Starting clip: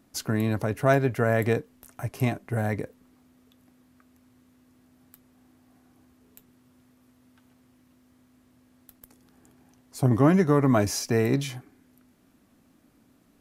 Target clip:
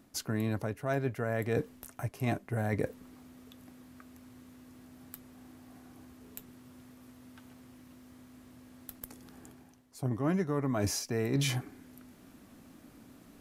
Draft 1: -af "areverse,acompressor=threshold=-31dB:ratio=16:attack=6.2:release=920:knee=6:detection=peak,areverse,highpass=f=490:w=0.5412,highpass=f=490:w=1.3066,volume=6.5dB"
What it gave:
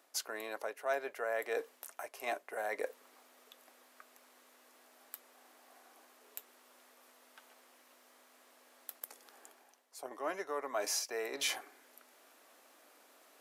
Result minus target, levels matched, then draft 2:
500 Hz band +2.5 dB
-af "areverse,acompressor=threshold=-31dB:ratio=16:attack=6.2:release=920:knee=6:detection=peak,areverse,volume=6.5dB"

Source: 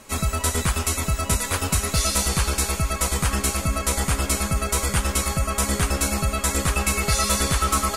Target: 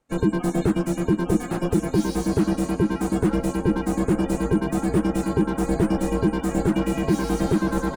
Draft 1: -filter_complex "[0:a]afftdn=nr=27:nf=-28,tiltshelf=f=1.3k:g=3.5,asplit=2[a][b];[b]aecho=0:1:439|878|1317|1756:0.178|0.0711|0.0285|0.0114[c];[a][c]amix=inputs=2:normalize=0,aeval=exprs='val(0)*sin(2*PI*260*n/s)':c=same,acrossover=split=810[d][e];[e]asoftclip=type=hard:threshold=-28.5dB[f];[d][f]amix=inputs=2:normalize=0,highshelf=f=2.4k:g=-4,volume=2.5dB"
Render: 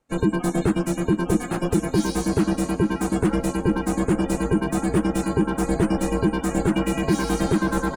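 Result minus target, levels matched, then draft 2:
hard clip: distortion -5 dB
-filter_complex "[0:a]afftdn=nr=27:nf=-28,tiltshelf=f=1.3k:g=3.5,asplit=2[a][b];[b]aecho=0:1:439|878|1317|1756:0.178|0.0711|0.0285|0.0114[c];[a][c]amix=inputs=2:normalize=0,aeval=exprs='val(0)*sin(2*PI*260*n/s)':c=same,acrossover=split=810[d][e];[e]asoftclip=type=hard:threshold=-35dB[f];[d][f]amix=inputs=2:normalize=0,highshelf=f=2.4k:g=-4,volume=2.5dB"

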